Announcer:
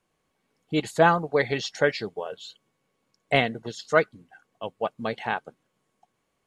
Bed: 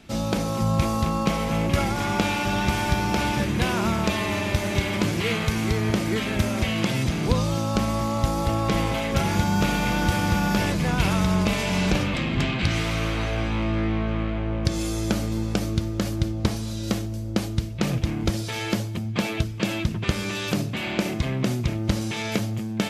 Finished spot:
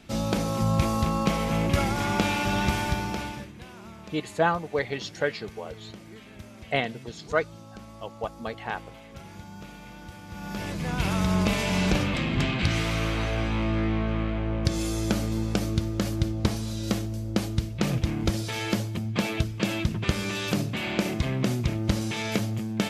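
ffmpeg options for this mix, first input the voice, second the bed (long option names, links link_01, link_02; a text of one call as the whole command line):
ffmpeg -i stem1.wav -i stem2.wav -filter_complex "[0:a]adelay=3400,volume=-4.5dB[link_01];[1:a]volume=18dB,afade=type=out:start_time=2.65:duration=0.87:silence=0.105925,afade=type=in:start_time=10.28:duration=1.16:silence=0.105925[link_02];[link_01][link_02]amix=inputs=2:normalize=0" out.wav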